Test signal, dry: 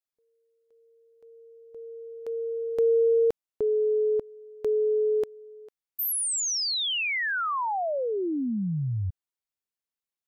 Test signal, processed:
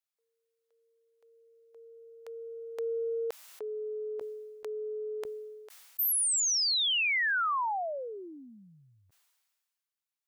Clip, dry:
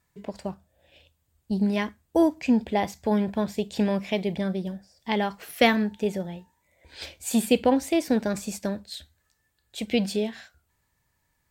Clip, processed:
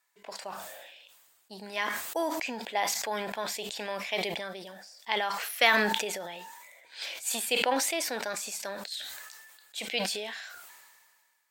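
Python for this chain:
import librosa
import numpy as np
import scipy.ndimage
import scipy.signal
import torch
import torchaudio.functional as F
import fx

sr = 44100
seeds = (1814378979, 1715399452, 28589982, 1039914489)

y = scipy.signal.sosfilt(scipy.signal.butter(2, 870.0, 'highpass', fs=sr, output='sos'), x)
y = fx.sustainer(y, sr, db_per_s=32.0)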